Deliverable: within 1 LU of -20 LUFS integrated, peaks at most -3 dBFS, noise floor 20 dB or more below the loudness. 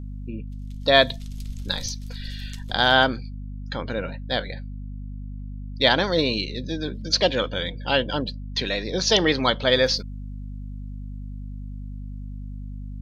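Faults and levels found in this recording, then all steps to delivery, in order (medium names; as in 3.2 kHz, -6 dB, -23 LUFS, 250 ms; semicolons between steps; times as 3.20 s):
hum 50 Hz; highest harmonic 250 Hz; hum level -31 dBFS; loudness -22.5 LUFS; peak level -1.5 dBFS; loudness target -20.0 LUFS
-> de-hum 50 Hz, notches 5; trim +2.5 dB; peak limiter -3 dBFS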